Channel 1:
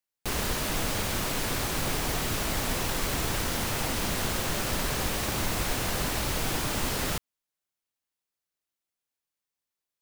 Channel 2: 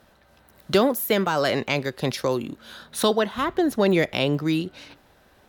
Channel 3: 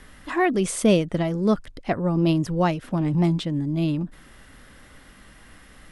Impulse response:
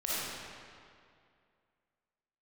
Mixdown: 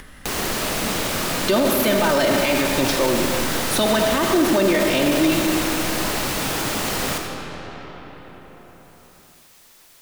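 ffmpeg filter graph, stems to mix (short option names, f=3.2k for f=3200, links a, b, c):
-filter_complex "[0:a]acrossover=split=140|3000[a][b][c];[a]acompressor=threshold=-41dB:ratio=5[d];[d][b][c]amix=inputs=3:normalize=0,volume=2dB,asplit=2[e][f];[f]volume=-6dB[g];[1:a]aecho=1:1:3.3:0.65,adelay=750,volume=1dB,asplit=2[h][i];[i]volume=-7.5dB[j];[2:a]volume=-16dB[k];[3:a]atrim=start_sample=2205[l];[g][j]amix=inputs=2:normalize=0[m];[m][l]afir=irnorm=-1:irlink=0[n];[e][h][k][n]amix=inputs=4:normalize=0,acompressor=mode=upward:threshold=-25dB:ratio=2.5,alimiter=limit=-9.5dB:level=0:latency=1:release=13"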